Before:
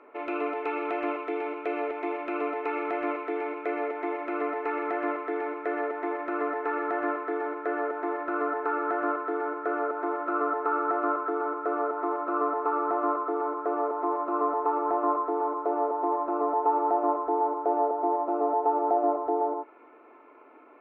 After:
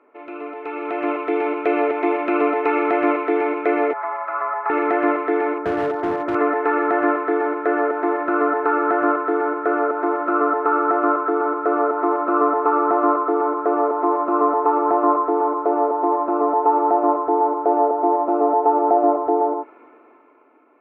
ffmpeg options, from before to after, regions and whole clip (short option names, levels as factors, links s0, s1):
-filter_complex "[0:a]asettb=1/sr,asplit=3[s0][s1][s2];[s0]atrim=end=3.934[s3];[s1]atrim=start=3.93:end=4.7,asetpts=PTS-STARTPTS,afade=t=in:d=0.004:c=qsin,afade=t=out:st=0.766:d=0.004:c=qsin,highshelf=f=1900:t=q:w=1.5:g=-12,afreqshift=-24,highpass=f=760:w=0.5412,highpass=f=760:w=1.3066[s4];[s2]atrim=start=4.696[s5];[s3][s4]acrossfade=d=0.004:c1=hsin:c2=qsin[s6];[s6][s5]acrossfade=d=0.004:c1=qsin:c2=hsin,asettb=1/sr,asplit=3[s7][s8][s9];[s7]atrim=end=5.584[s10];[s8]atrim=start=5.58:end=6.35,asetpts=PTS-STARTPTS,afade=t=in:d=0.004:c=qsin,afade=t=out:st=0.766:d=0.004:c=qsin,lowpass=1400,asoftclip=type=hard:threshold=0.0376[s11];[s9]atrim=start=6.346[s12];[s10][s11]acrossfade=d=0.004:c1=hsin:c2=qsin[s13];[s13][s12]acrossfade=d=0.004:c1=qsin:c2=hsin,highpass=110,bass=f=250:g=7,treble=f=4000:g=-5,dynaudnorm=f=100:g=21:m=6.68,volume=0.631"